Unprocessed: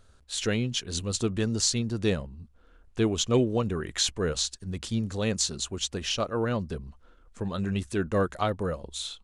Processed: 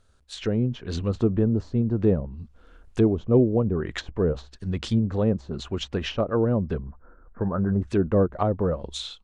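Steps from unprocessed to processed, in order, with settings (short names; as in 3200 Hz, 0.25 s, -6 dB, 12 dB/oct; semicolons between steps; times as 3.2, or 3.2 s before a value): 6.8–7.82 elliptic low-pass 1600 Hz, stop band 60 dB; treble ducked by the level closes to 630 Hz, closed at -24 dBFS; AGC gain up to 11 dB; gain -4.5 dB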